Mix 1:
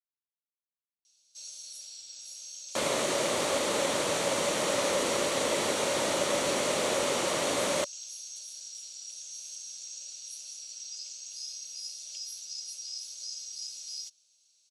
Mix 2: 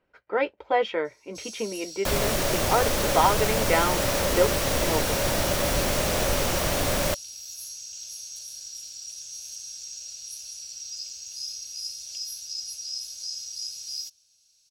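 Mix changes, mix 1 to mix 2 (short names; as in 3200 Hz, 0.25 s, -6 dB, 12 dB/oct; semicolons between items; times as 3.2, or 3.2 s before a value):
speech: unmuted; second sound: entry -0.70 s; master: remove speaker cabinet 290–9300 Hz, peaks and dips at 720 Hz -5 dB, 1600 Hz -6 dB, 2600 Hz -3 dB, 5200 Hz -7 dB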